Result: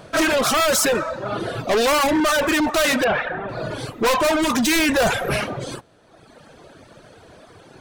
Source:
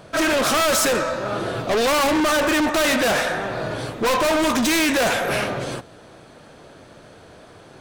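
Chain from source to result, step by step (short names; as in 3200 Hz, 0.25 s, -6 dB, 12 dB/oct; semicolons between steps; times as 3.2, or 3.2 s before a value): reverb removal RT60 1.2 s; 3.04–3.49 LPF 2900 Hz 24 dB/oct; 4.76–5.36 low shelf 150 Hz +9.5 dB; gain +2 dB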